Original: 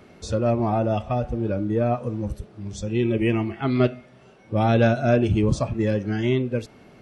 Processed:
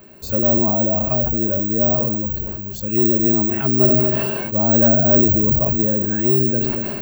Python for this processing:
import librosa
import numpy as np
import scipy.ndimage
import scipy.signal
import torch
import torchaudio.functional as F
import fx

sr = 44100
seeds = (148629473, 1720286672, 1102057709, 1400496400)

p1 = fx.env_lowpass_down(x, sr, base_hz=930.0, full_db=-18.5)
p2 = fx.ripple_eq(p1, sr, per_octave=1.4, db=9)
p3 = np.clip(10.0 ** (15.5 / 20.0) * p2, -1.0, 1.0) / 10.0 ** (15.5 / 20.0)
p4 = p2 + (p3 * 10.0 ** (-5.0 / 20.0))
p5 = p4 + 10.0 ** (-19.0 / 20.0) * np.pad(p4, (int(234 * sr / 1000.0), 0))[:len(p4)]
p6 = (np.kron(p5[::2], np.eye(2)[0]) * 2)[:len(p5)]
p7 = fx.sustainer(p6, sr, db_per_s=23.0)
y = p7 * 10.0 ** (-4.0 / 20.0)